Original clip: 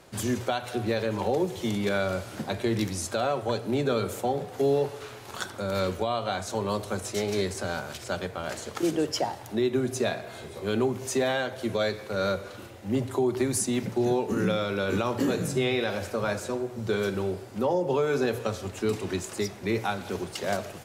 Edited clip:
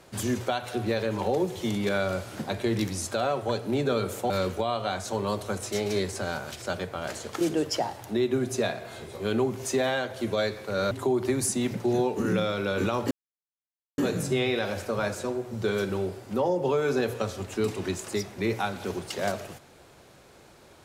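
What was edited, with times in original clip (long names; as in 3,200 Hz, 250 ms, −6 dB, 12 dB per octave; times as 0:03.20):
0:04.30–0:05.72: remove
0:12.33–0:13.03: remove
0:15.23: splice in silence 0.87 s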